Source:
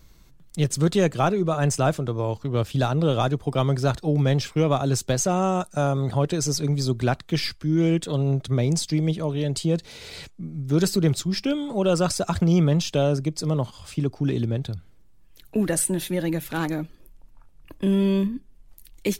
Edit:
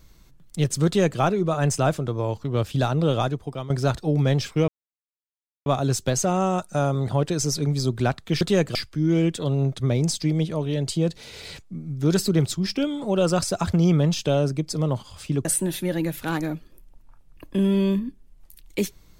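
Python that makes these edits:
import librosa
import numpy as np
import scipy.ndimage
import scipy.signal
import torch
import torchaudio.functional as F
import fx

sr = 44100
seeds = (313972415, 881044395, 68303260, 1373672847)

y = fx.edit(x, sr, fx.duplicate(start_s=0.86, length_s=0.34, to_s=7.43),
    fx.fade_out_to(start_s=3.14, length_s=0.56, floor_db=-15.0),
    fx.insert_silence(at_s=4.68, length_s=0.98),
    fx.cut(start_s=14.13, length_s=1.6), tone=tone)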